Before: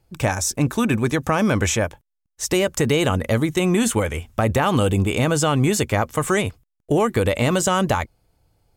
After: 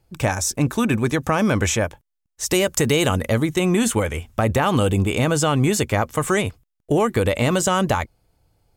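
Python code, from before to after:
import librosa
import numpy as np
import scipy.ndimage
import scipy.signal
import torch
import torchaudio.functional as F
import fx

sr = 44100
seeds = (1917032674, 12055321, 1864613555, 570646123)

y = fx.high_shelf(x, sr, hz=4300.0, db=6.5, at=(2.46, 3.28))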